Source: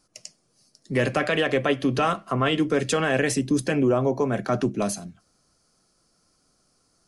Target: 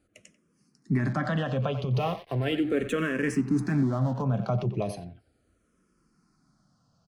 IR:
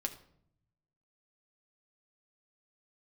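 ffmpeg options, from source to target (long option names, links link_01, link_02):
-filter_complex "[0:a]highpass=frequency=98:poles=1,bass=frequency=250:gain=12,treble=frequency=4000:gain=-11,asplit=2[link_01][link_02];[link_02]adelay=90,highpass=300,lowpass=3400,asoftclip=type=hard:threshold=-16dB,volume=-12dB[link_03];[link_01][link_03]amix=inputs=2:normalize=0,alimiter=limit=-15dB:level=0:latency=1:release=107,asplit=3[link_04][link_05][link_06];[link_04]afade=type=out:start_time=1.93:duration=0.02[link_07];[link_05]aeval=exprs='sgn(val(0))*max(abs(val(0))-0.00841,0)':channel_layout=same,afade=type=in:start_time=1.93:duration=0.02,afade=type=out:start_time=4.21:duration=0.02[link_08];[link_06]afade=type=in:start_time=4.21:duration=0.02[link_09];[link_07][link_08][link_09]amix=inputs=3:normalize=0,asplit=2[link_10][link_11];[link_11]afreqshift=-0.37[link_12];[link_10][link_12]amix=inputs=2:normalize=1"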